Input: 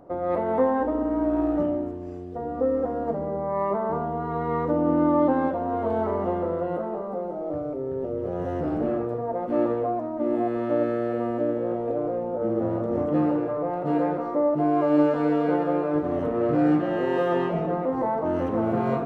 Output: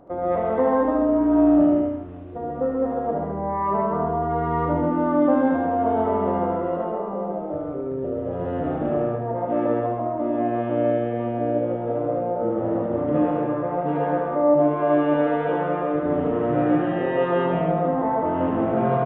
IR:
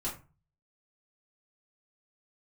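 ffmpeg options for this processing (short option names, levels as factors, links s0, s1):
-filter_complex "[0:a]asplit=2[s0][s1];[s1]aecho=0:1:136:0.668[s2];[s0][s2]amix=inputs=2:normalize=0,aresample=8000,aresample=44100,asplit=2[s3][s4];[s4]aecho=0:1:75|150|225|300|375:0.631|0.259|0.106|0.0435|0.0178[s5];[s3][s5]amix=inputs=2:normalize=0"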